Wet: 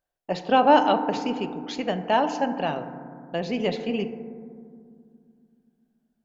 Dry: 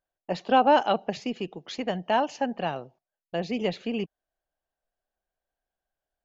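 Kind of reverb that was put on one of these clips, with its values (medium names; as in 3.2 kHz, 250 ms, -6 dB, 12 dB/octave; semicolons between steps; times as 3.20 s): FDN reverb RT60 2.2 s, low-frequency decay 1.55×, high-frequency decay 0.25×, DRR 8 dB; trim +2 dB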